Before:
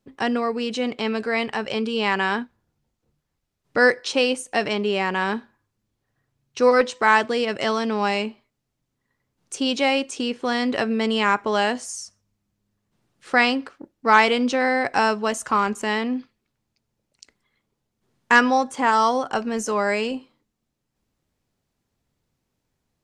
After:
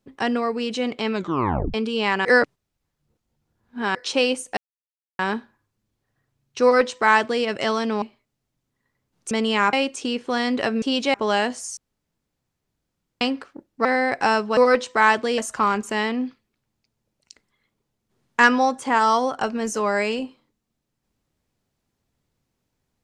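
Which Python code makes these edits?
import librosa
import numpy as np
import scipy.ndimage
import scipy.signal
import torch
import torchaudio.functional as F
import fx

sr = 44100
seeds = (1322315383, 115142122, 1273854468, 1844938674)

y = fx.edit(x, sr, fx.tape_stop(start_s=1.13, length_s=0.61),
    fx.reverse_span(start_s=2.25, length_s=1.7),
    fx.silence(start_s=4.57, length_s=0.62),
    fx.duplicate(start_s=6.63, length_s=0.81, to_s=15.3),
    fx.cut(start_s=8.02, length_s=0.25),
    fx.swap(start_s=9.56, length_s=0.32, other_s=10.97, other_length_s=0.42),
    fx.room_tone_fill(start_s=12.02, length_s=1.44),
    fx.cut(start_s=14.1, length_s=0.48), tone=tone)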